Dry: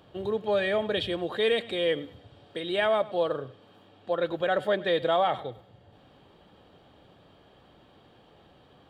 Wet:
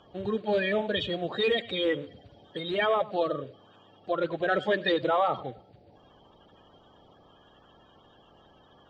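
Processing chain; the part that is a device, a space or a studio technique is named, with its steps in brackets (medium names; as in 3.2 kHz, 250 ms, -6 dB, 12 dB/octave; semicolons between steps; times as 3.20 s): clip after many re-uploads (low-pass 6.6 kHz 24 dB/octave; coarse spectral quantiser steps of 30 dB); 4.48–4.92 s: peaking EQ 4.2 kHz +5 dB 2 oct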